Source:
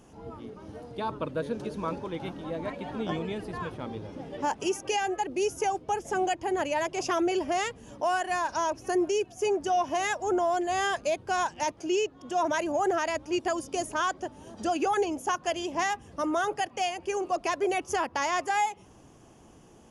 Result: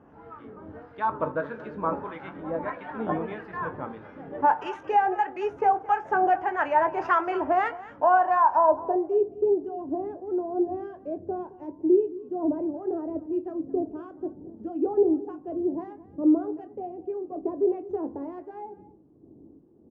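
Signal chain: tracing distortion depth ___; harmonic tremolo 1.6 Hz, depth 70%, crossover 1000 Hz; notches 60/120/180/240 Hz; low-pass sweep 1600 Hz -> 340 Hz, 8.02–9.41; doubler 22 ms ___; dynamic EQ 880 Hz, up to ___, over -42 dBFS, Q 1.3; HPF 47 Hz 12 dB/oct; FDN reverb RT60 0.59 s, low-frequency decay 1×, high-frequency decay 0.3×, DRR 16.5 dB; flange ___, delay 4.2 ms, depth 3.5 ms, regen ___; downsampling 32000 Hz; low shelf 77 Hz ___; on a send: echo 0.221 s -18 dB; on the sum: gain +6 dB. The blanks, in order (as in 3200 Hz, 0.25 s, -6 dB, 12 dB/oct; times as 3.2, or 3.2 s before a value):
0.04 ms, -11.5 dB, +7 dB, 0.75 Hz, -89%, -3.5 dB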